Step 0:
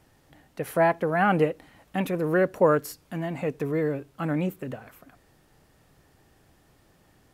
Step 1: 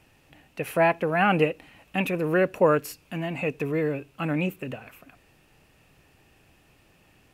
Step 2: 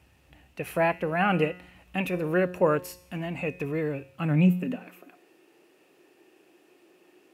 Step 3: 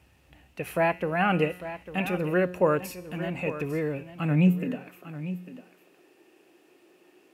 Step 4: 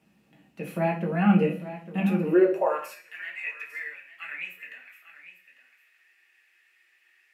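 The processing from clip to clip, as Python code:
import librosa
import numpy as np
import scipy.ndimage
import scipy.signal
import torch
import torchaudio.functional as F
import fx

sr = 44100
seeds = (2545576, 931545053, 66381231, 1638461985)

y1 = fx.peak_eq(x, sr, hz=2600.0, db=14.0, octaves=0.34)
y2 = fx.filter_sweep_highpass(y1, sr, from_hz=60.0, to_hz=350.0, start_s=3.82, end_s=4.97, q=5.1)
y2 = fx.comb_fb(y2, sr, f0_hz=180.0, decay_s=0.74, harmonics='all', damping=0.0, mix_pct=60)
y2 = F.gain(torch.from_numpy(y2), 4.0).numpy()
y3 = y2 + 10.0 ** (-13.0 / 20.0) * np.pad(y2, (int(849 * sr / 1000.0), 0))[:len(y2)]
y4 = fx.filter_sweep_highpass(y3, sr, from_hz=200.0, to_hz=1900.0, start_s=2.18, end_s=3.01, q=5.6)
y4 = fx.room_shoebox(y4, sr, seeds[0], volume_m3=31.0, walls='mixed', distance_m=0.57)
y4 = F.gain(torch.from_numpy(y4), -8.5).numpy()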